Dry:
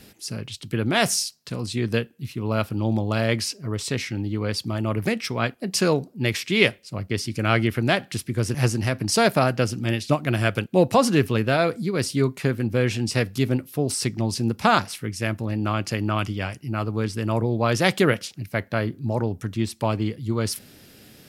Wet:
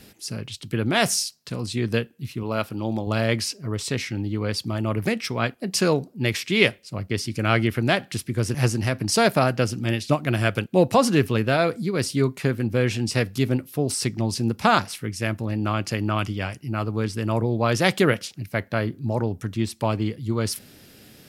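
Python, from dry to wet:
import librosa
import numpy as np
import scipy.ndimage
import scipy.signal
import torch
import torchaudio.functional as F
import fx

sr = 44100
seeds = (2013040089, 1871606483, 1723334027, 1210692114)

y = fx.low_shelf(x, sr, hz=140.0, db=-10.5, at=(2.43, 3.07))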